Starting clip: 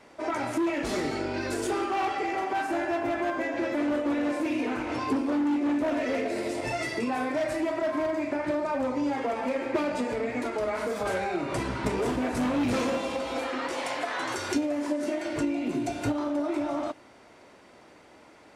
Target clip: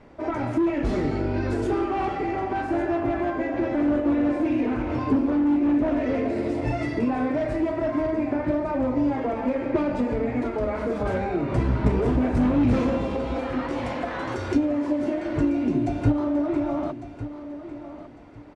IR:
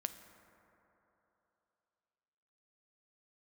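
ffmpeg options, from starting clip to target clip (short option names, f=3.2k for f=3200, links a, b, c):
-af "aemphasis=mode=reproduction:type=riaa,aecho=1:1:1152|2304|3456:0.224|0.0582|0.0151"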